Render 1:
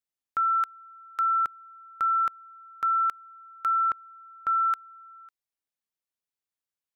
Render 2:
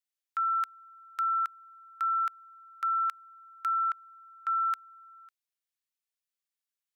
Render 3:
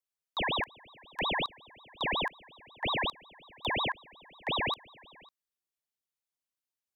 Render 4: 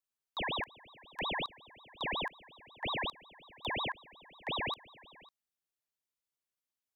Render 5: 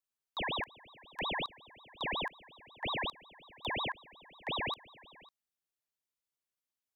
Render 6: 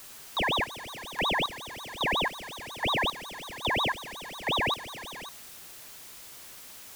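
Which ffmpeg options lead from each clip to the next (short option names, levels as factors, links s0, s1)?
-af "highpass=1500"
-af "aeval=exprs='val(0)*sin(2*PI*1400*n/s+1400*0.8/5.5*sin(2*PI*5.5*n/s))':c=same"
-af "alimiter=level_in=1.5:limit=0.0631:level=0:latency=1,volume=0.668,volume=0.794"
-af anull
-af "aeval=exprs='val(0)+0.5*0.00531*sgn(val(0))':c=same,volume=2.37"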